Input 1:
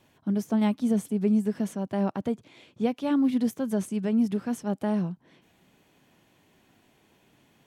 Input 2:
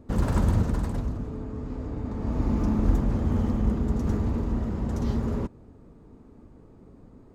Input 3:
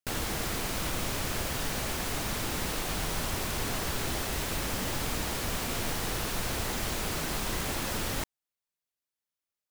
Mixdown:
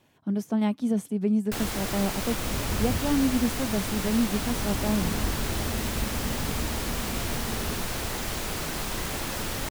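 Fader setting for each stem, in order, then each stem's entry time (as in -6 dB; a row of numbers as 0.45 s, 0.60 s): -1.0 dB, -8.0 dB, +1.0 dB; 0.00 s, 2.35 s, 1.45 s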